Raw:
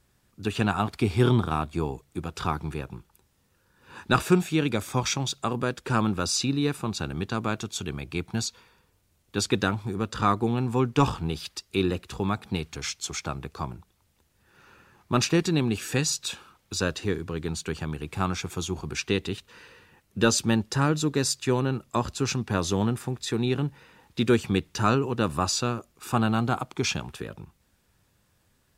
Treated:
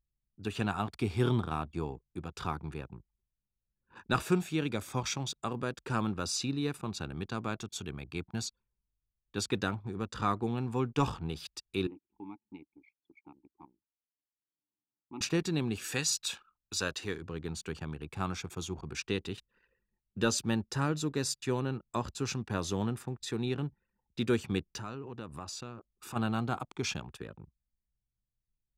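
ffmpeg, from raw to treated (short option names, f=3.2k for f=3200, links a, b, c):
-filter_complex "[0:a]asettb=1/sr,asplit=3[a][b][c];[a]atrim=end=11.874[d];[b]atrim=start=11.87:end=15.21,asetpts=PTS-STARTPTS,afade=t=in:d=0.004:c=qsin,afade=t=out:st=3.336:d=0.004:c=qsin,asplit=3[e][f][g];[e]bandpass=f=300:t=q:w=8,volume=0dB[h];[f]bandpass=f=870:t=q:w=8,volume=-6dB[i];[g]bandpass=f=2.24k:t=q:w=8,volume=-9dB[j];[h][i][j]amix=inputs=3:normalize=0[k];[c]atrim=start=15.206[l];[d][k]acrossfade=d=0.004:c1=hsin:c2=qsin[m];[m][l]acrossfade=d=0.004:c1=qsin:c2=hsin,asettb=1/sr,asplit=3[n][o][p];[n]atrim=end=15.844[q];[o]atrim=start=15.84:end=17.22,asetpts=PTS-STARTPTS,afade=t=in:d=0.004:c=qsin,afade=t=out:st=1.376:d=0.004:c=qsin,tiltshelf=f=640:g=-4.5[r];[p]atrim=start=17.216[s];[q][r]acrossfade=d=0.004:c1=hsin:c2=qsin[t];[t][s]acrossfade=d=0.004:c1=qsin:c2=hsin,asplit=3[u][v][w];[u]afade=t=out:st=24.77:d=0.02[x];[v]acompressor=threshold=-34dB:ratio=2.5:attack=3.2:release=140:knee=1:detection=peak,afade=t=in:st=24.77:d=0.02,afade=t=out:st=26.15:d=0.02[y];[w]afade=t=in:st=26.15:d=0.02[z];[x][y][z]amix=inputs=3:normalize=0,anlmdn=0.1,volume=-7.5dB"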